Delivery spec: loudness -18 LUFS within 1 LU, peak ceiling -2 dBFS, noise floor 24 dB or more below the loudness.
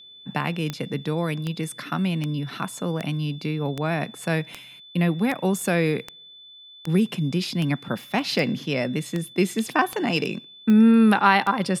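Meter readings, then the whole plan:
clicks 15; steady tone 3500 Hz; tone level -44 dBFS; loudness -23.5 LUFS; peak -2.5 dBFS; loudness target -18.0 LUFS
-> de-click; notch 3500 Hz, Q 30; gain +5.5 dB; limiter -2 dBFS

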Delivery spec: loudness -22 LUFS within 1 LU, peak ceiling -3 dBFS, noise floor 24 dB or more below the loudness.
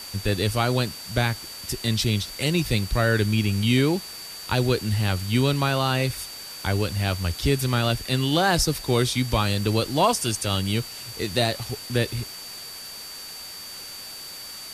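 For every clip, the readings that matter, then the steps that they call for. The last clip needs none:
steady tone 4600 Hz; tone level -38 dBFS; noise floor -38 dBFS; noise floor target -48 dBFS; loudness -24.0 LUFS; peak -7.5 dBFS; loudness target -22.0 LUFS
-> notch 4600 Hz, Q 30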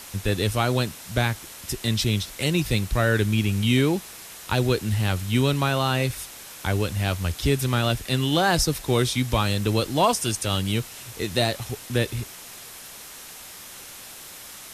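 steady tone none; noise floor -42 dBFS; noise floor target -48 dBFS
-> denoiser 6 dB, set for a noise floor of -42 dBFS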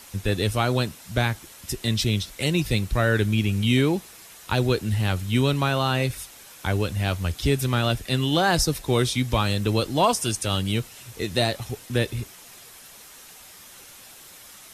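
noise floor -47 dBFS; noise floor target -48 dBFS
-> denoiser 6 dB, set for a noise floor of -47 dBFS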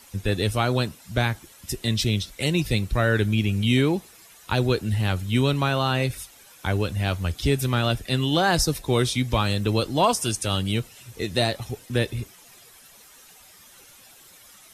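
noise floor -51 dBFS; loudness -24.0 LUFS; peak -7.5 dBFS; loudness target -22.0 LUFS
-> gain +2 dB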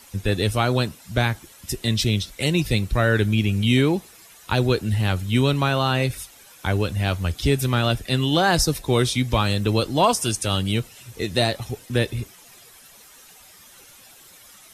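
loudness -22.0 LUFS; peak -5.5 dBFS; noise floor -49 dBFS

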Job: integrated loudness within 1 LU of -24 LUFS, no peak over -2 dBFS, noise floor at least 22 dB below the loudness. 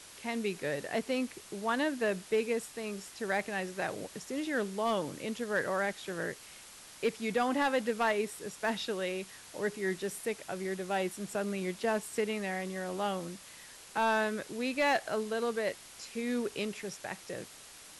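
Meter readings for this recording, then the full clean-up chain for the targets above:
clipped 0.3%; flat tops at -22.0 dBFS; noise floor -52 dBFS; noise floor target -56 dBFS; loudness -34.0 LUFS; peak -22.0 dBFS; loudness target -24.0 LUFS
-> clip repair -22 dBFS; denoiser 6 dB, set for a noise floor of -52 dBFS; gain +10 dB

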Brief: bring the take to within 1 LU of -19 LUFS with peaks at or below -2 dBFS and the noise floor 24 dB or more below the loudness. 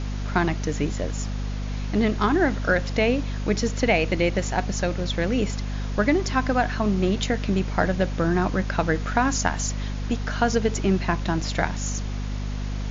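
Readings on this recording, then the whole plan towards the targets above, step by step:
hum 50 Hz; harmonics up to 250 Hz; hum level -26 dBFS; noise floor -29 dBFS; noise floor target -49 dBFS; loudness -24.5 LUFS; peak -6.5 dBFS; loudness target -19.0 LUFS
-> de-hum 50 Hz, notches 5; noise print and reduce 20 dB; gain +5.5 dB; limiter -2 dBFS

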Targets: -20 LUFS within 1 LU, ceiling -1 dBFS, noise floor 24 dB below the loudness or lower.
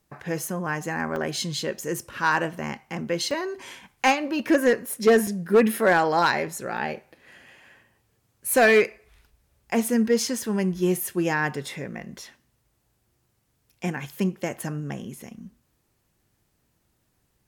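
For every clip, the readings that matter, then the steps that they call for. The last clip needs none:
clipped 0.3%; flat tops at -11.5 dBFS; dropouts 4; longest dropout 2.8 ms; loudness -24.5 LUFS; peak -11.5 dBFS; loudness target -20.0 LUFS
-> clip repair -11.5 dBFS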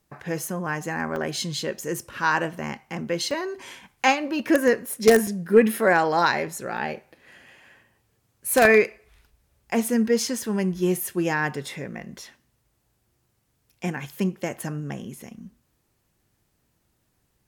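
clipped 0.0%; dropouts 4; longest dropout 2.8 ms
-> interpolate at 1.16/3.31/5.27/6.77, 2.8 ms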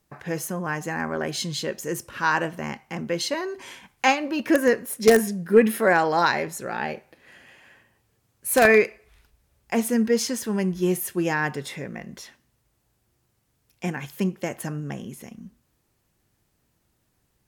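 dropouts 0; loudness -24.0 LUFS; peak -2.5 dBFS; loudness target -20.0 LUFS
-> gain +4 dB; limiter -1 dBFS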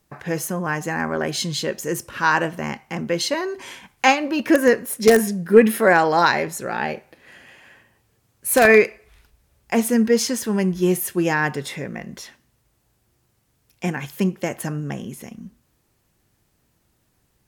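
loudness -20.0 LUFS; peak -1.0 dBFS; noise floor -67 dBFS

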